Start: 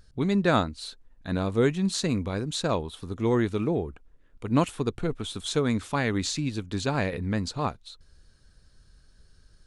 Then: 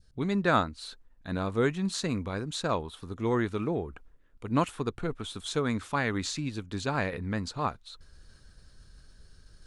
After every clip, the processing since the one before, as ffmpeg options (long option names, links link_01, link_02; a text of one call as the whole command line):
ffmpeg -i in.wav -af "areverse,acompressor=mode=upward:threshold=-38dB:ratio=2.5,areverse,adynamicequalizer=threshold=0.01:dfrequency=1300:dqfactor=1:tfrequency=1300:tqfactor=1:attack=5:release=100:ratio=0.375:range=3:mode=boostabove:tftype=bell,volume=-4.5dB" out.wav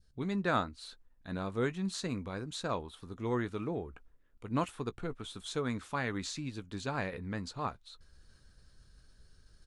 ffmpeg -i in.wav -filter_complex "[0:a]asplit=2[link_01][link_02];[link_02]adelay=16,volume=-14dB[link_03];[link_01][link_03]amix=inputs=2:normalize=0,volume=-6dB" out.wav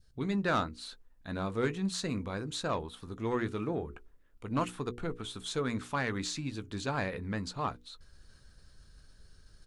ffmpeg -i in.wav -af "asoftclip=type=tanh:threshold=-24.5dB,bandreject=frequency=60:width_type=h:width=6,bandreject=frequency=120:width_type=h:width=6,bandreject=frequency=180:width_type=h:width=6,bandreject=frequency=240:width_type=h:width=6,bandreject=frequency=300:width_type=h:width=6,bandreject=frequency=360:width_type=h:width=6,bandreject=frequency=420:width_type=h:width=6,bandreject=frequency=480:width_type=h:width=6,volume=3.5dB" out.wav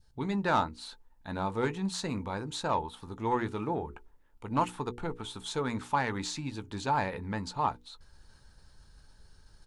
ffmpeg -i in.wav -af "equalizer=frequency=880:width_type=o:width=0.28:gain=14.5" out.wav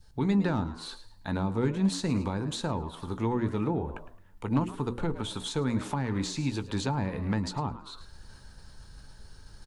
ffmpeg -i in.wav -filter_complex "[0:a]asplit=4[link_01][link_02][link_03][link_04];[link_02]adelay=108,afreqshift=87,volume=-16dB[link_05];[link_03]adelay=216,afreqshift=174,volume=-26.2dB[link_06];[link_04]adelay=324,afreqshift=261,volume=-36.3dB[link_07];[link_01][link_05][link_06][link_07]amix=inputs=4:normalize=0,acrossover=split=330[link_08][link_09];[link_09]acompressor=threshold=-41dB:ratio=10[link_10];[link_08][link_10]amix=inputs=2:normalize=0,volume=7.5dB" out.wav